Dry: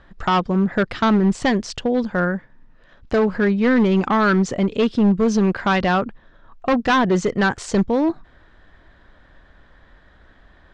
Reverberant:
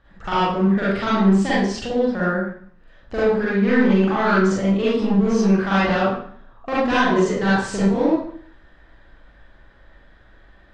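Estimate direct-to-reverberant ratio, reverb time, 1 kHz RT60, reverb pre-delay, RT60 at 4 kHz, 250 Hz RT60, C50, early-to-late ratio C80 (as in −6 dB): −10.0 dB, 0.55 s, 0.55 s, 39 ms, 0.50 s, 0.60 s, −4.0 dB, 2.5 dB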